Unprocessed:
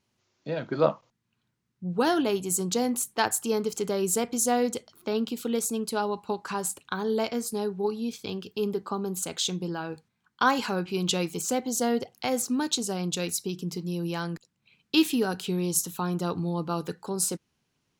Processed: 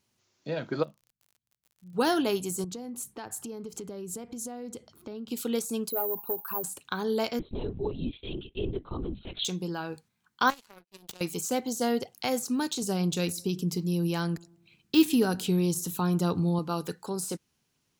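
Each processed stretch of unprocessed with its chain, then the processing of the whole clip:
0:00.82–0:01.93: guitar amp tone stack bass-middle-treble 10-0-1 + surface crackle 51 per second −51 dBFS
0:02.64–0:05.31: spectral tilt −2.5 dB per octave + downward compressor 5 to 1, threshold −36 dBFS
0:05.90–0:06.64: spectral envelope exaggerated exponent 2 + parametric band 73 Hz −15 dB 1.2 octaves + bad sample-rate conversion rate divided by 3×, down filtered, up zero stuff
0:07.39–0:09.45: flat-topped bell 970 Hz −8 dB 2.3 octaves + linear-prediction vocoder at 8 kHz whisper
0:10.50–0:11.21: high-shelf EQ 4,700 Hz +3.5 dB + notch filter 7,200 Hz, Q 25 + power curve on the samples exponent 3
0:12.82–0:16.59: low-shelf EQ 270 Hz +7.5 dB + feedback echo with a low-pass in the loop 103 ms, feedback 51%, low-pass 900 Hz, level −23 dB
whole clip: de-essing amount 65%; high-shelf EQ 5,700 Hz +9 dB; level −1.5 dB

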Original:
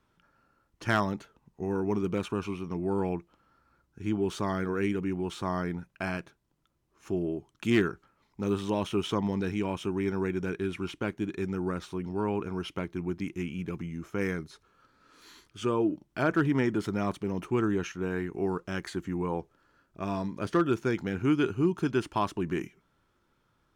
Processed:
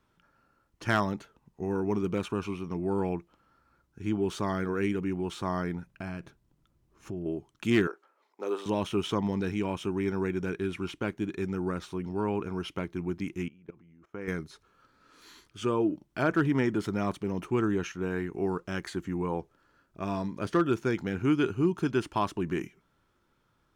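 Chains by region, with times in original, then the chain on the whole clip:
0:05.87–0:07.26: low-shelf EQ 280 Hz +9.5 dB + downward compressor 3 to 1, threshold −36 dBFS
0:07.87–0:08.66: high-pass filter 420 Hz 24 dB per octave + tilt shelving filter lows +5 dB, about 1,300 Hz
0:13.48–0:14.28: low-pass filter 1,100 Hz 6 dB per octave + low-shelf EQ 320 Hz −9 dB + output level in coarse steps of 19 dB
whole clip: no processing

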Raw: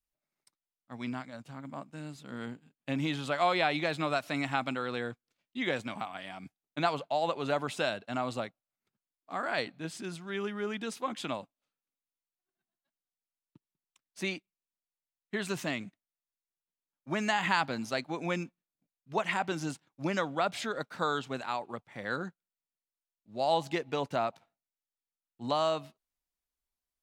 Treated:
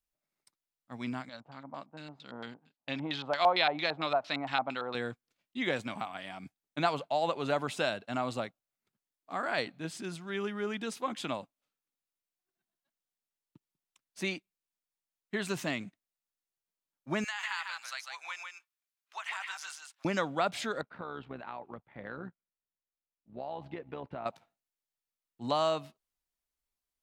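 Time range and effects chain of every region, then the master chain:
0:01.29–0:04.95: low-shelf EQ 400 Hz −9 dB + auto-filter low-pass square 4.4 Hz 840–4,300 Hz
0:17.24–0:20.05: high-pass filter 1,100 Hz 24 dB per octave + downward compressor 2 to 1, threshold −37 dBFS + single-tap delay 150 ms −4.5 dB
0:20.81–0:24.26: high-frequency loss of the air 430 metres + downward compressor 4 to 1, threshold −34 dBFS + amplitude modulation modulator 66 Hz, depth 40%
whole clip: no processing

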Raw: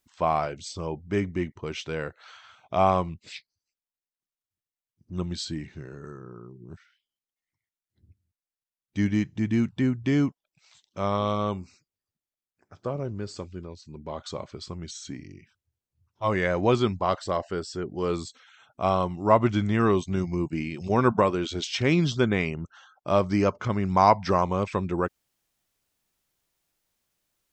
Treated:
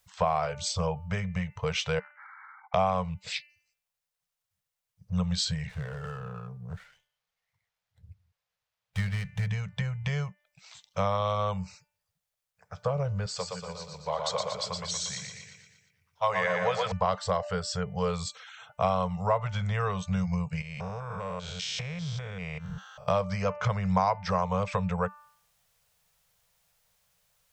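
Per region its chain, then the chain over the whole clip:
0:01.99–0:02.74: linear-phase brick-wall band-pass 770–2,300 Hz + downward compressor 12 to 1, threshold −52 dBFS
0:05.69–0:09.47: parametric band 230 Hz −9.5 dB 0.54 octaves + windowed peak hold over 5 samples
0:13.26–0:16.92: high-pass filter 510 Hz 6 dB per octave + repeating echo 118 ms, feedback 53%, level −4 dB
0:20.61–0:23.08: spectrum averaged block by block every 200 ms + high-shelf EQ 7,500 Hz +7.5 dB + downward compressor 10 to 1, threshold −37 dBFS
whole clip: hum removal 295.3 Hz, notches 10; downward compressor 5 to 1, threshold −31 dBFS; Chebyshev band-stop filter 190–450 Hz, order 4; level +8 dB

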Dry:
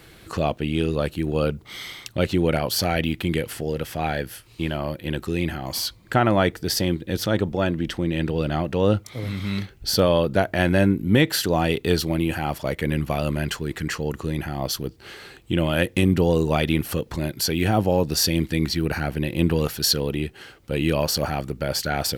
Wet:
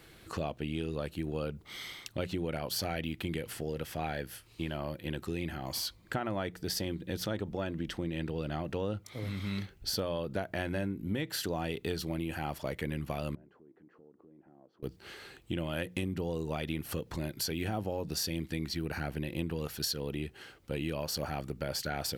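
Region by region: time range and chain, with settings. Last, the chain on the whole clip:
0:13.35–0:14.83: mu-law and A-law mismatch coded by mu + four-pole ladder band-pass 380 Hz, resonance 25% + downward compressor 3 to 1, threshold −50 dBFS
whole clip: mains-hum notches 60/120/180 Hz; downward compressor, threshold −23 dBFS; level −7.5 dB

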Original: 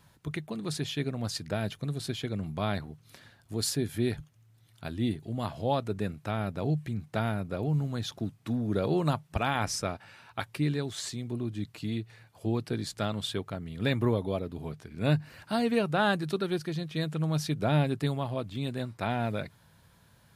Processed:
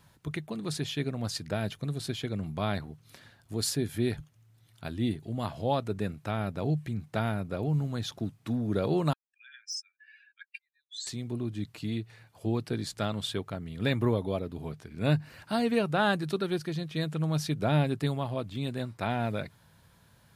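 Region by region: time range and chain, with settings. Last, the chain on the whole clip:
0:09.13–0:11.07: expanding power law on the bin magnitudes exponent 2.6 + Chebyshev high-pass filter 1,600 Hz, order 8 + de-essing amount 75%
whole clip: no processing

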